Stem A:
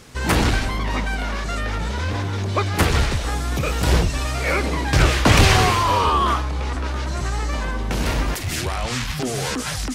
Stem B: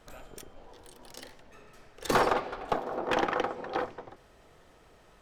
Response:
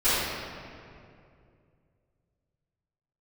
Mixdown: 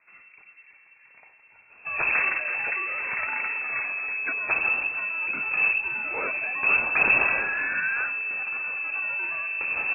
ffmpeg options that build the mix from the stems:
-filter_complex "[0:a]equalizer=f=610:w=1.3:g=-11.5,adelay=1700,volume=0.501[s0];[1:a]volume=0.562,asplit=2[s1][s2];[s2]volume=0.376,aecho=0:1:327:1[s3];[s0][s1][s3]amix=inputs=3:normalize=0,lowpass=f=2300:t=q:w=0.5098,lowpass=f=2300:t=q:w=0.6013,lowpass=f=2300:t=q:w=0.9,lowpass=f=2300:t=q:w=2.563,afreqshift=-2700"

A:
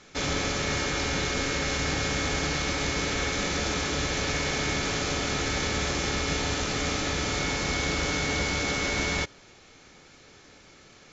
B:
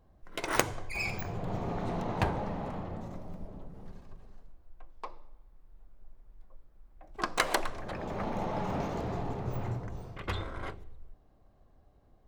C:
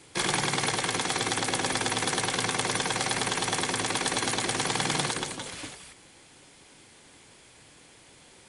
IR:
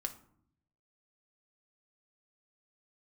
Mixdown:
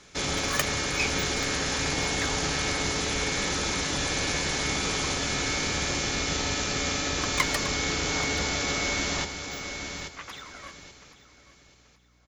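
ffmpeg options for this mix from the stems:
-filter_complex "[0:a]highshelf=f=4100:g=6.5,volume=0.75,asplit=2[s0][s1];[s1]volume=0.422[s2];[1:a]highpass=1200,aphaser=in_gain=1:out_gain=1:delay=1.8:decay=0.73:speed=0.98:type=sinusoidal,volume=0.841,asplit=2[s3][s4];[s4]volume=0.133[s5];[2:a]tiltshelf=f=970:g=3,volume=0.266,asplit=2[s6][s7];[s7]volume=0.501[s8];[s2][s5][s8]amix=inputs=3:normalize=0,aecho=0:1:832|1664|2496|3328:1|0.26|0.0676|0.0176[s9];[s0][s3][s6][s9]amix=inputs=4:normalize=0,aeval=exprs='val(0)+0.000708*(sin(2*PI*60*n/s)+sin(2*PI*2*60*n/s)/2+sin(2*PI*3*60*n/s)/3+sin(2*PI*4*60*n/s)/4+sin(2*PI*5*60*n/s)/5)':c=same"

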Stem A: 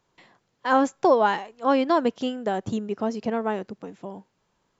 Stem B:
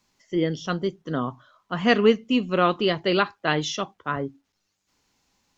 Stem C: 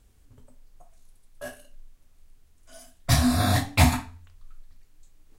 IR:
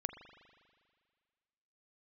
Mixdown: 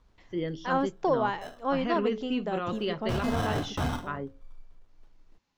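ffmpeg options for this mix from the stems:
-filter_complex "[0:a]lowpass=5500,volume=0.422[s0];[1:a]lowpass=6200,bandreject=f=108:t=h:w=4,bandreject=f=216:t=h:w=4,bandreject=f=324:t=h:w=4,bandreject=f=432:t=h:w=4,bandreject=f=540:t=h:w=4,volume=0.422[s1];[2:a]aecho=1:1:5.8:0.3,acrusher=samples=19:mix=1:aa=0.000001,volume=0.631[s2];[s1][s2]amix=inputs=2:normalize=0,highshelf=f=7700:g=-11,alimiter=limit=0.0841:level=0:latency=1:release=16,volume=1[s3];[s0][s3]amix=inputs=2:normalize=0"

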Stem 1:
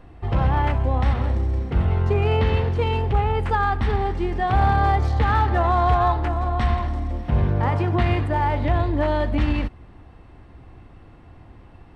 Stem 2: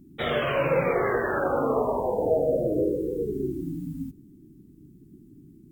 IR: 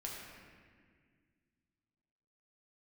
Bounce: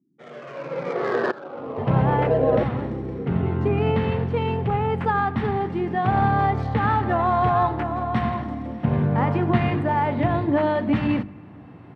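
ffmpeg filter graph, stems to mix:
-filter_complex "[0:a]bass=f=250:g=11,treble=f=4000:g=-12,bandreject=f=50:t=h:w=6,bandreject=f=100:t=h:w=6,bandreject=f=150:t=h:w=6,bandreject=f=200:t=h:w=6,bandreject=f=250:t=h:w=6,bandreject=f=300:t=h:w=6,bandreject=f=350:t=h:w=6,adelay=1550,volume=0.501,asplit=2[s0][s1];[s1]volume=0.0944[s2];[1:a]adynamicsmooth=sensitivity=1.5:basefreq=1000,aeval=exprs='val(0)*pow(10,-20*if(lt(mod(-0.76*n/s,1),2*abs(-0.76)/1000),1-mod(-0.76*n/s,1)/(2*abs(-0.76)/1000),(mod(-0.76*n/s,1)-2*abs(-0.76)/1000)/(1-2*abs(-0.76)/1000))/20)':c=same,volume=1.19[s3];[2:a]atrim=start_sample=2205[s4];[s2][s4]afir=irnorm=-1:irlink=0[s5];[s0][s3][s5]amix=inputs=3:normalize=0,dynaudnorm=f=710:g=3:m=5.31,highpass=f=140:w=0.5412,highpass=f=140:w=1.3066"

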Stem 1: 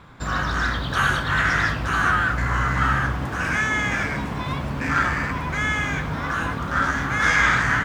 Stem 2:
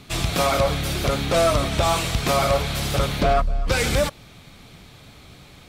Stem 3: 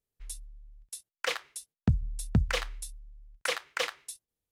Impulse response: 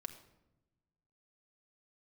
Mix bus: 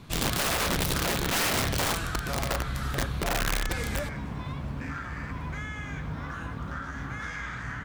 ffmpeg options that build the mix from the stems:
-filter_complex "[0:a]volume=0.335,asplit=2[s0][s1];[s1]volume=0.0668[s2];[1:a]volume=0.355,afade=t=out:st=1.67:d=0.49:silence=0.446684,asplit=2[s3][s4];[s4]volume=0.126[s5];[2:a]lowpass=f=1300:t=q:w=2.9,volume=0.224,asplit=2[s6][s7];[s7]volume=0.224[s8];[s0][s6]amix=inputs=2:normalize=0,acompressor=threshold=0.0158:ratio=6,volume=1[s9];[3:a]atrim=start_sample=2205[s10];[s2][s5][s8]amix=inputs=3:normalize=0[s11];[s11][s10]afir=irnorm=-1:irlink=0[s12];[s3][s9][s12]amix=inputs=3:normalize=0,lowshelf=f=230:g=8.5,aeval=exprs='(mod(11.9*val(0)+1,2)-1)/11.9':c=same"

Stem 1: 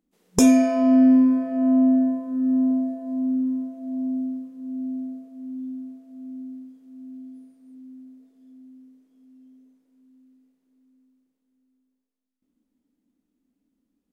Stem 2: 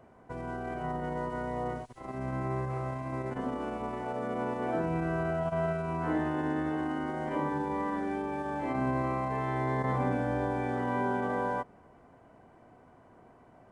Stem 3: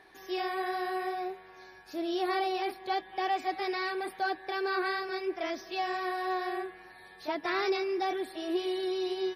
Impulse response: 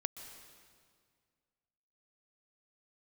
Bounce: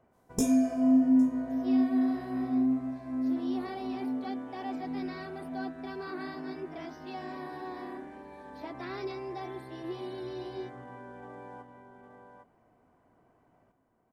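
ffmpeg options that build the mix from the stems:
-filter_complex "[0:a]equalizer=f=1600:w=0.37:g=-11,flanger=delay=16:depth=3.6:speed=1.7,volume=0.531,asplit=3[s0][s1][s2];[s1]volume=0.355[s3];[s2]volume=0.0708[s4];[1:a]acompressor=threshold=0.0224:ratio=6,volume=0.224,asplit=3[s5][s6][s7];[s6]volume=0.447[s8];[s7]volume=0.631[s9];[2:a]lowshelf=f=480:g=7,adelay=1350,volume=0.251[s10];[3:a]atrim=start_sample=2205[s11];[s3][s8]amix=inputs=2:normalize=0[s12];[s12][s11]afir=irnorm=-1:irlink=0[s13];[s4][s9]amix=inputs=2:normalize=0,aecho=0:1:808:1[s14];[s0][s5][s10][s13][s14]amix=inputs=5:normalize=0"

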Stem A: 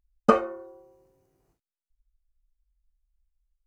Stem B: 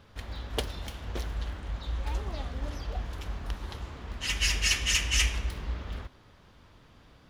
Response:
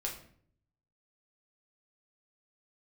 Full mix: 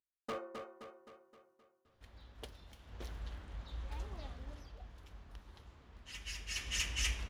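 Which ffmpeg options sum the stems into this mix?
-filter_complex "[0:a]highpass=190,volume=12.6,asoftclip=hard,volume=0.0794,volume=0.178,asplit=2[s0][s1];[s1]volume=0.501[s2];[1:a]adelay=1850,volume=0.708,afade=t=in:st=2.79:d=0.3:silence=0.421697,afade=t=out:st=4.25:d=0.51:silence=0.446684,afade=t=in:st=6.46:d=0.33:silence=0.398107[s3];[s2]aecho=0:1:261|522|783|1044|1305|1566|1827|2088:1|0.52|0.27|0.141|0.0731|0.038|0.0198|0.0103[s4];[s0][s3][s4]amix=inputs=3:normalize=0"

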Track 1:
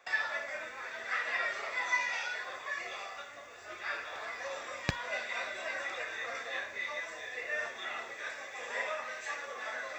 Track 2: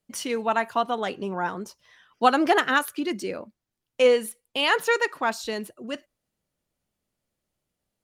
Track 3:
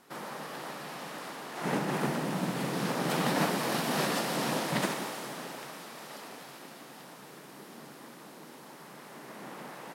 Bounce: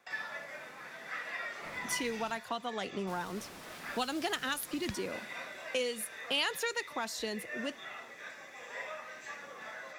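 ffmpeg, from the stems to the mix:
-filter_complex "[0:a]volume=0.501[s0];[1:a]adelay=1750,volume=0.708[s1];[2:a]aeval=exprs='0.0316*(abs(mod(val(0)/0.0316+3,4)-2)-1)':c=same,volume=0.188,asplit=3[s2][s3][s4];[s2]atrim=end=2.38,asetpts=PTS-STARTPTS,afade=t=out:st=2.376:d=0.004:c=hsin[s5];[s3]atrim=start=2.38:end=3.07,asetpts=PTS-STARTPTS,volume=0[s6];[s4]atrim=start=3.07,asetpts=PTS-STARTPTS,afade=t=in:d=0.004:c=hsin[s7];[s5][s6][s7]concat=n=3:v=0:a=1[s8];[s0][s1][s8]amix=inputs=3:normalize=0,acrossover=split=150|3000[s9][s10][s11];[s10]acompressor=threshold=0.02:ratio=6[s12];[s9][s12][s11]amix=inputs=3:normalize=0"

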